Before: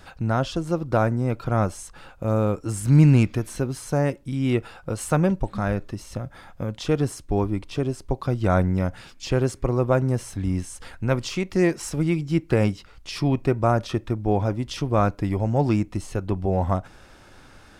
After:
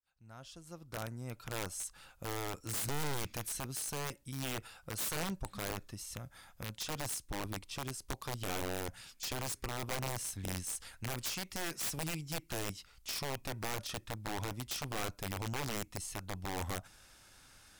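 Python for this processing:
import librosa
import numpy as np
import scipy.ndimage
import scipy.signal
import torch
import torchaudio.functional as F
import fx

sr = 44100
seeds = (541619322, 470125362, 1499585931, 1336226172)

y = fx.fade_in_head(x, sr, length_s=2.16)
y = fx.peak_eq(y, sr, hz=370.0, db=-5.0, octaves=1.6)
y = fx.tube_stage(y, sr, drive_db=16.0, bias=0.45)
y = scipy.signal.lfilter([1.0, -0.8], [1.0], y)
y = (np.mod(10.0 ** (32.5 / 20.0) * y + 1.0, 2.0) - 1.0) / 10.0 ** (32.5 / 20.0)
y = F.gain(torch.from_numpy(y), 2.0).numpy()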